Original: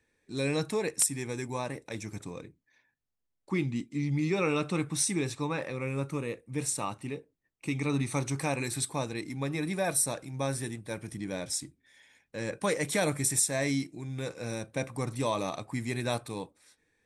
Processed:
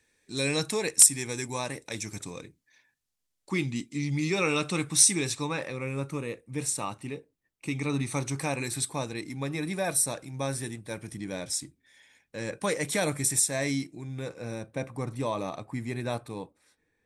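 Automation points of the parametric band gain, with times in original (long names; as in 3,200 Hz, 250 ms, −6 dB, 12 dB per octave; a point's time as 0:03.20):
parametric band 7,500 Hz 3 octaves
0:05.35 +10 dB
0:05.85 +2 dB
0:13.70 +2 dB
0:14.47 −6.5 dB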